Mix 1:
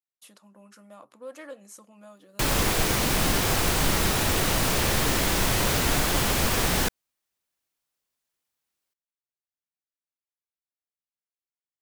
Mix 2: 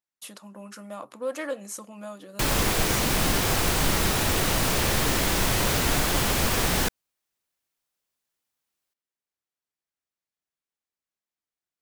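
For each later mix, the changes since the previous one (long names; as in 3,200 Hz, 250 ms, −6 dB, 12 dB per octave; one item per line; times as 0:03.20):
speech +10.0 dB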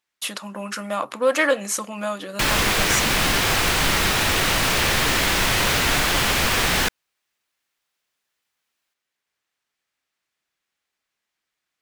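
speech +9.0 dB
master: add parametric band 2,300 Hz +8.5 dB 2.7 octaves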